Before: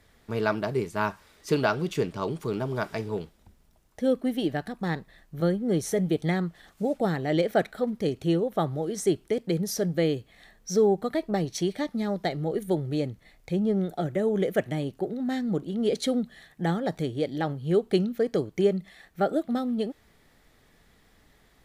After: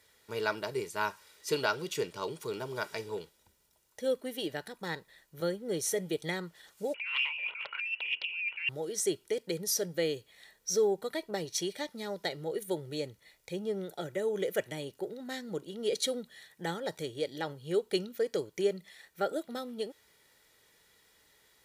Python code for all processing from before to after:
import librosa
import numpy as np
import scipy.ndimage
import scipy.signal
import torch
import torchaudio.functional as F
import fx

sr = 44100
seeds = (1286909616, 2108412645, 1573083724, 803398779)

y = fx.chain(x, sr, fx.freq_invert(carrier_hz=2900),
    fx.over_compress(threshold_db=-33.0, ratio=-1.0),
    fx.doppler_dist(depth_ms=0.62), at=(6.94, 8.69))
y = fx.highpass(y, sr, hz=260.0, slope=6)
y = fx.high_shelf(y, sr, hz=2600.0, db=10.0)
y = y + 0.45 * np.pad(y, (int(2.1 * sr / 1000.0), 0))[:len(y)]
y = F.gain(torch.from_numpy(y), -7.0).numpy()